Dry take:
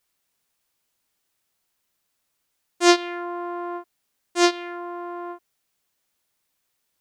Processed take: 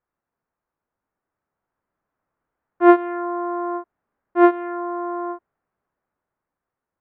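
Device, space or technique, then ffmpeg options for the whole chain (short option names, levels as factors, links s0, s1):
action camera in a waterproof case: -af "lowpass=f=1500:w=0.5412,lowpass=f=1500:w=1.3066,dynaudnorm=f=300:g=11:m=3.76" -ar 22050 -c:a aac -b:a 96k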